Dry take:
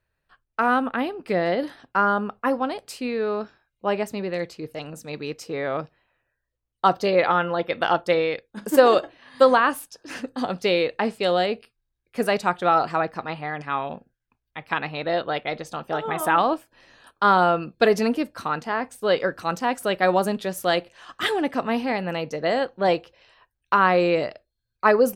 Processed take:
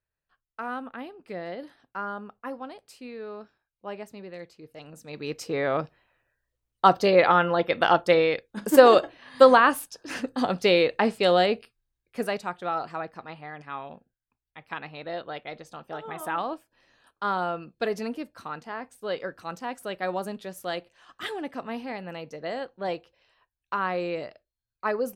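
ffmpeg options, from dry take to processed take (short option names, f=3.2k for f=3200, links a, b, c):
-af "volume=1dB,afade=t=in:st=4.67:d=0.47:silence=0.446684,afade=t=in:st=5.14:d=0.26:silence=0.446684,afade=t=out:st=11.53:d=0.94:silence=0.281838"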